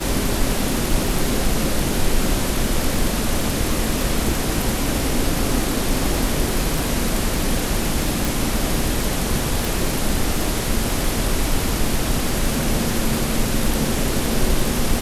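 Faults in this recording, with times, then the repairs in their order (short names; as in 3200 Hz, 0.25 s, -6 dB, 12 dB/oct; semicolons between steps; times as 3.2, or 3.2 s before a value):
crackle 33/s -23 dBFS
8.25 pop
9.65 pop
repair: de-click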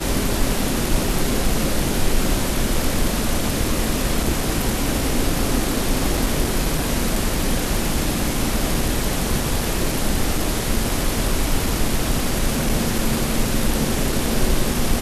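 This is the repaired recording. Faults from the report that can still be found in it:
none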